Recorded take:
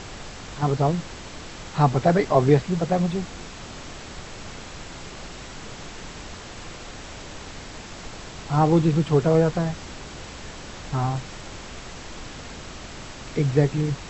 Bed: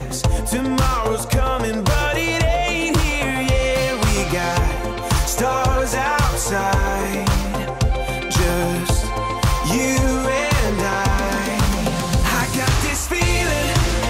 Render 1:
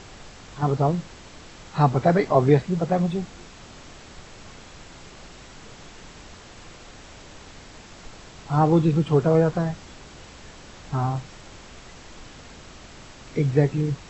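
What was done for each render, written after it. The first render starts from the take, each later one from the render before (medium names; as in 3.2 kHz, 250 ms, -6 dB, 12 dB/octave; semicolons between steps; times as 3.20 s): noise print and reduce 6 dB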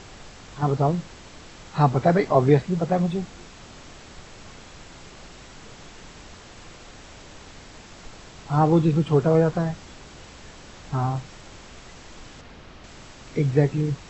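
12.41–12.84 s: distance through air 130 m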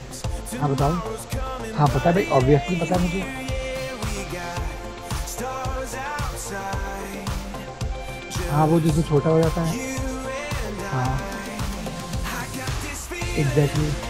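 add bed -10 dB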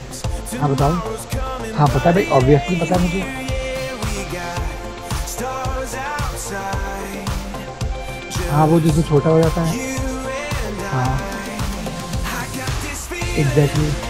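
trim +4.5 dB; peak limiter -1 dBFS, peak gain reduction 1.5 dB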